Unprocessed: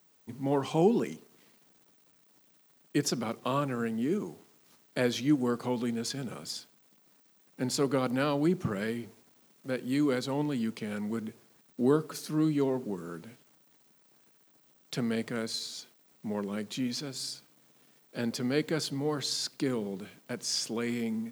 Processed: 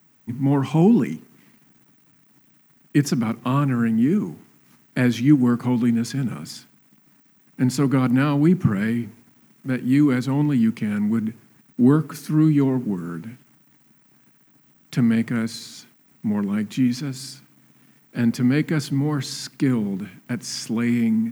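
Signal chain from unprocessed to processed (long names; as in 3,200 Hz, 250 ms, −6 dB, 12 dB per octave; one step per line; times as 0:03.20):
octave-band graphic EQ 125/250/500/2,000/4,000/8,000 Hz +8/+7/−9/+4/−7/−3 dB
level +6.5 dB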